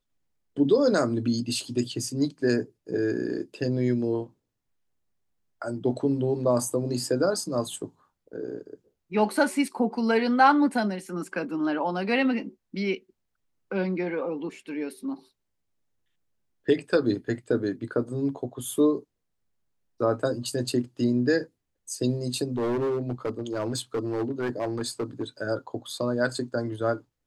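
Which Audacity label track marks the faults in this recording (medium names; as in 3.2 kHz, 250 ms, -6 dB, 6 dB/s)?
22.560000	25.230000	clipped -23.5 dBFS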